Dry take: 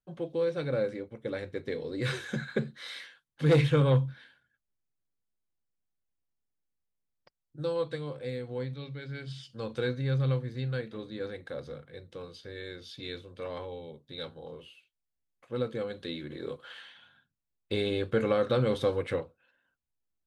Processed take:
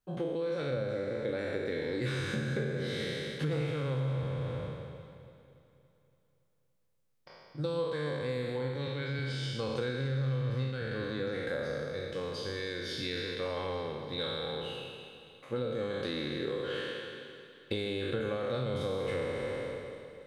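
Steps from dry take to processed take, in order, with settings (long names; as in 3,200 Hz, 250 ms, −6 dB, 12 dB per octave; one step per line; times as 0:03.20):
peak hold with a decay on every bin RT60 1.91 s
dynamic equaliser 130 Hz, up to +4 dB, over −37 dBFS, Q 4.2
downward compressor 10 to 1, threshold −34 dBFS, peak gain reduction 20 dB
delay that swaps between a low-pass and a high-pass 142 ms, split 820 Hz, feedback 74%, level −11.5 dB
level +3.5 dB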